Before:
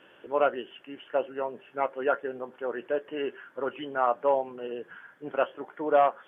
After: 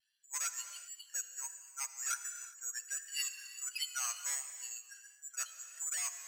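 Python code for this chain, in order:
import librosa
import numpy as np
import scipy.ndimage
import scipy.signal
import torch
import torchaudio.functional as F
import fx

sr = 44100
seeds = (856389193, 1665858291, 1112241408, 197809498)

y = fx.bin_expand(x, sr, power=2.0)
y = fx.high_shelf_res(y, sr, hz=1800.0, db=8.5, q=1.5, at=(2.86, 4.98))
y = 10.0 ** (-30.5 / 20.0) * np.tanh(y / 10.0 ** (-30.5 / 20.0))
y = fx.over_compress(y, sr, threshold_db=-33.0, ratio=-1.0)
y = (np.kron(scipy.signal.resample_poly(y, 1, 6), np.eye(6)[0]) * 6)[:len(y)]
y = scipy.signal.sosfilt(scipy.signal.butter(4, 1400.0, 'highpass', fs=sr, output='sos'), y)
y = fx.air_absorb(y, sr, metres=70.0)
y = fx.echo_feedback(y, sr, ms=400, feedback_pct=31, wet_db=-23.5)
y = fx.rev_gated(y, sr, seeds[0], gate_ms=390, shape='flat', drr_db=9.0)
y = fx.vibrato(y, sr, rate_hz=1.4, depth_cents=36.0)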